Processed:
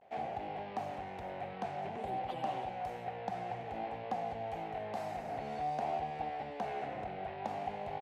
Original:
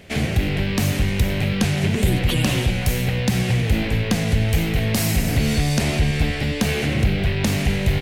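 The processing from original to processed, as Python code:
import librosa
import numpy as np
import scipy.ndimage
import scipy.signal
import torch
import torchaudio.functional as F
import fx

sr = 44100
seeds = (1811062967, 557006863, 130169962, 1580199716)

y = fx.vibrato(x, sr, rate_hz=0.54, depth_cents=74.0)
y = fx.bandpass_q(y, sr, hz=770.0, q=6.9)
y = y * 10.0 ** (1.0 / 20.0)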